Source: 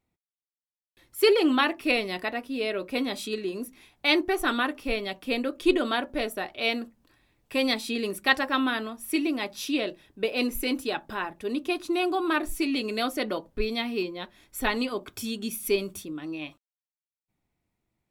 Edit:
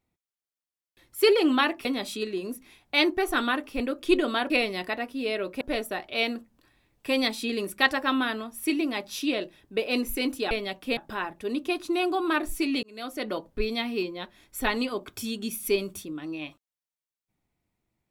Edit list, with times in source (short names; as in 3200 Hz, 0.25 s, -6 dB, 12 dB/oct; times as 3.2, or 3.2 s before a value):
1.85–2.96 move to 6.07
4.91–5.37 move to 10.97
12.83–13.39 fade in